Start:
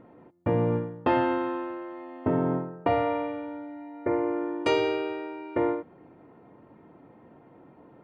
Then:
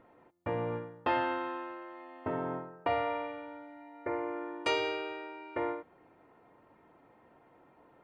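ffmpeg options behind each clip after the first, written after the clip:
-af "equalizer=f=180:w=0.39:g=-13,volume=0.891"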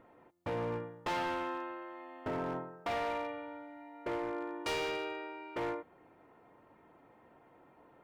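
-af "volume=39.8,asoftclip=hard,volume=0.0251"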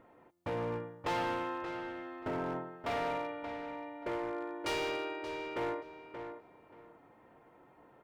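-filter_complex "[0:a]asplit=2[s0][s1];[s1]adelay=579,lowpass=f=3400:p=1,volume=0.398,asplit=2[s2][s3];[s3]adelay=579,lowpass=f=3400:p=1,volume=0.22,asplit=2[s4][s5];[s5]adelay=579,lowpass=f=3400:p=1,volume=0.22[s6];[s0][s2][s4][s6]amix=inputs=4:normalize=0"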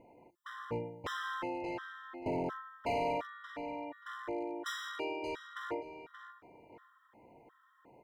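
-af "afftfilt=real='re*gt(sin(2*PI*1.4*pts/sr)*(1-2*mod(floor(b*sr/1024/1000),2)),0)':imag='im*gt(sin(2*PI*1.4*pts/sr)*(1-2*mod(floor(b*sr/1024/1000),2)),0)':win_size=1024:overlap=0.75,volume=1.26"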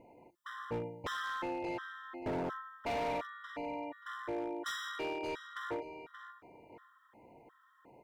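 -af "volume=47.3,asoftclip=hard,volume=0.0211,volume=1.12"

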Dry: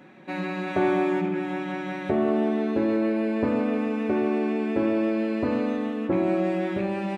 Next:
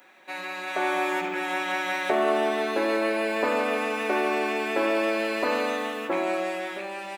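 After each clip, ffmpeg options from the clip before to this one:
-af "highpass=680,aemphasis=mode=production:type=50fm,dynaudnorm=f=200:g=11:m=2.66"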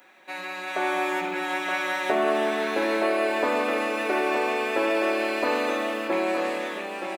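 -af "aecho=1:1:921:0.447"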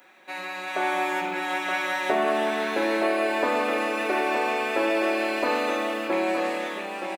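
-filter_complex "[0:a]asplit=2[s0][s1];[s1]adelay=42,volume=0.266[s2];[s0][s2]amix=inputs=2:normalize=0"

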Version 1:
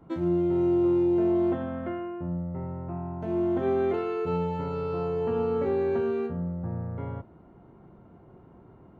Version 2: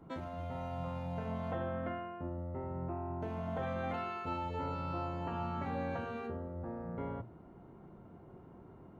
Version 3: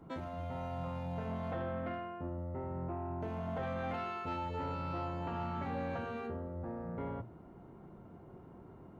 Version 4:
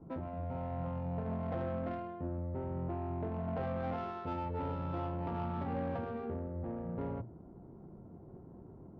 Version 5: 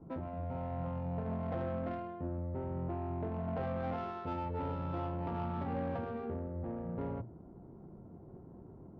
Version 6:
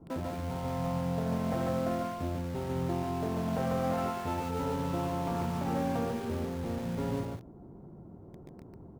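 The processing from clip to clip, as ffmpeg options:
-af "bandreject=f=60:t=h:w=6,bandreject=f=120:t=h:w=6,afftfilt=real='re*lt(hypot(re,im),0.158)':imag='im*lt(hypot(re,im),0.158)':win_size=1024:overlap=0.75,volume=0.794"
-af "asoftclip=type=tanh:threshold=0.0282,volume=1.12"
-af "adynamicsmooth=sensitivity=2.5:basefreq=700,volume=1.33"
-af anull
-filter_complex "[0:a]asplit=2[s0][s1];[s1]acrusher=bits=6:mix=0:aa=0.000001,volume=0.501[s2];[s0][s2]amix=inputs=2:normalize=0,aecho=1:1:145:0.668,volume=1.12"

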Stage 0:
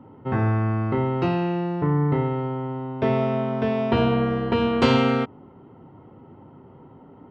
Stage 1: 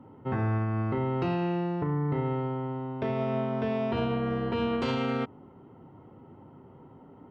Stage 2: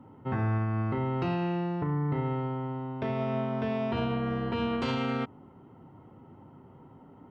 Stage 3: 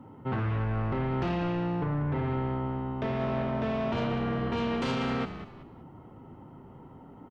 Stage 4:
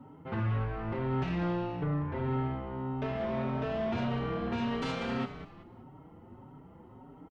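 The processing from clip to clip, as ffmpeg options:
-af "alimiter=limit=0.15:level=0:latency=1:release=104,volume=0.631"
-af "equalizer=f=440:w=1.5:g=-3.5"
-filter_complex "[0:a]aeval=exprs='0.1*sin(PI/2*1.78*val(0)/0.1)':c=same,asplit=4[s0][s1][s2][s3];[s1]adelay=190,afreqshift=-61,volume=0.282[s4];[s2]adelay=380,afreqshift=-122,volume=0.0902[s5];[s3]adelay=570,afreqshift=-183,volume=0.0288[s6];[s0][s4][s5][s6]amix=inputs=4:normalize=0,volume=0.501"
-filter_complex "[0:a]asplit=2[s0][s1];[s1]adelay=4.9,afreqshift=1.7[s2];[s0][s2]amix=inputs=2:normalize=1"

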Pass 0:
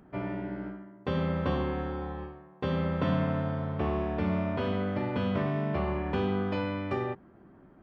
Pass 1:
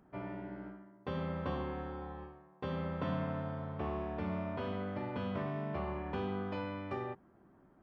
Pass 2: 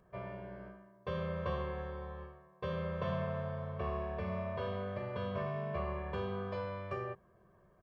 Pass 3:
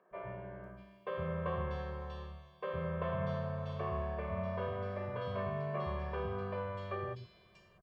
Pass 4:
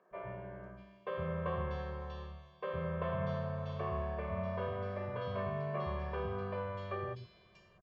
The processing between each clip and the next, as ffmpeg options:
-af "equalizer=f=930:w=1.1:g=3.5,volume=0.355"
-af "aecho=1:1:1.8:0.98,volume=0.75"
-filter_complex "[0:a]acrossover=split=270|3200[s0][s1][s2];[s0]adelay=110[s3];[s2]adelay=640[s4];[s3][s1][s4]amix=inputs=3:normalize=0,volume=1.12"
-af "aresample=16000,aresample=44100"

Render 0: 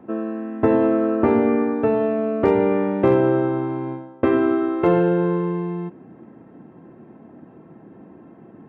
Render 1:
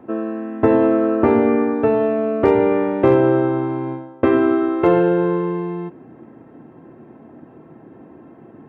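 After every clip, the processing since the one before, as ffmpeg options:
-af "equalizer=f=190:t=o:w=0.26:g=-8.5,volume=1.41"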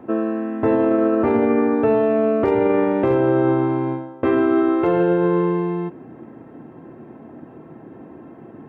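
-af "alimiter=limit=0.251:level=0:latency=1:release=37,volume=1.33"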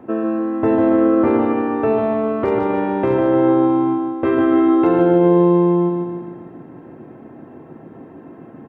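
-af "aecho=1:1:149|298|447|596|745|894|1043:0.562|0.309|0.17|0.0936|0.0515|0.0283|0.0156"

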